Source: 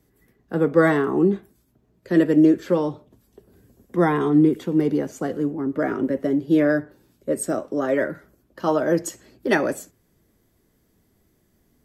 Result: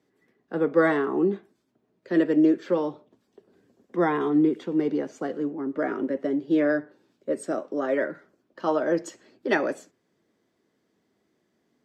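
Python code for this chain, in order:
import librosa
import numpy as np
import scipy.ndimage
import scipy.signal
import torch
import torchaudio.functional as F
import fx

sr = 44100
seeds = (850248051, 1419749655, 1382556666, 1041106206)

y = fx.bandpass_edges(x, sr, low_hz=240.0, high_hz=5100.0)
y = F.gain(torch.from_numpy(y), -3.0).numpy()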